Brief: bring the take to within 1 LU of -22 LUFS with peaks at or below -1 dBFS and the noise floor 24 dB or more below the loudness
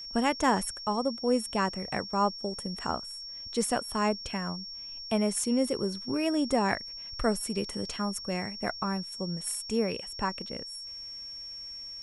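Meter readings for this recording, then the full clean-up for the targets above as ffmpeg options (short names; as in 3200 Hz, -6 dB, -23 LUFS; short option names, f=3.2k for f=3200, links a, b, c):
steady tone 5500 Hz; tone level -39 dBFS; loudness -31.0 LUFS; peak -11.5 dBFS; loudness target -22.0 LUFS
-> -af "bandreject=f=5.5k:w=30"
-af "volume=9dB"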